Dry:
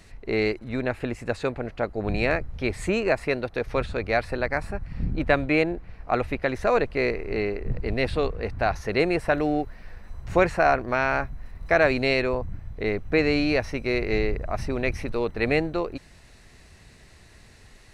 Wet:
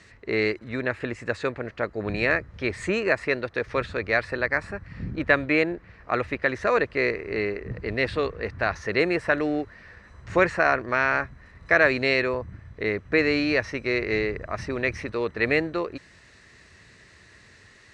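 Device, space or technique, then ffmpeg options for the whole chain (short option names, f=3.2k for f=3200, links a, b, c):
car door speaker: -af "highpass=90,equalizer=f=150:t=q:w=4:g=-4,equalizer=f=240:t=q:w=4:g=-3,equalizer=f=760:t=q:w=4:g=-7,equalizer=f=1.2k:t=q:w=4:g=3,equalizer=f=1.8k:t=q:w=4:g=7,lowpass=f=8.1k:w=0.5412,lowpass=f=8.1k:w=1.3066"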